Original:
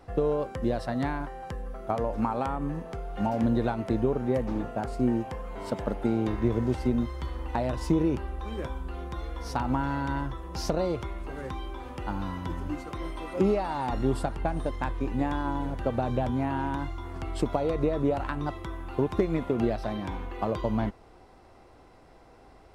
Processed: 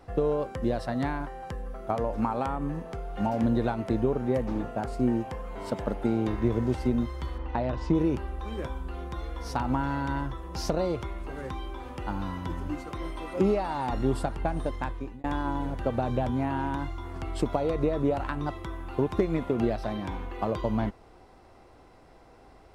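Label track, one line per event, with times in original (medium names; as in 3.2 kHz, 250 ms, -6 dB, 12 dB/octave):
7.380000	7.950000	distance through air 140 m
14.610000	15.240000	fade out equal-power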